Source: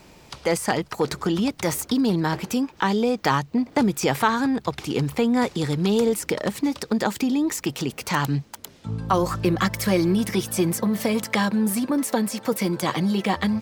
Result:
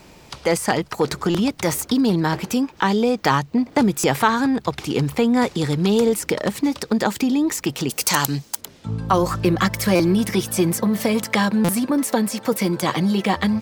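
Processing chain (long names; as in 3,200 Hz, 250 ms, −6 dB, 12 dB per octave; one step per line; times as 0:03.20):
0:07.89–0:08.61: bass and treble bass −5 dB, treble +13 dB
buffer that repeats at 0:01.30/0:03.99/0:09.95/0:11.64, samples 256, times 7
level +3 dB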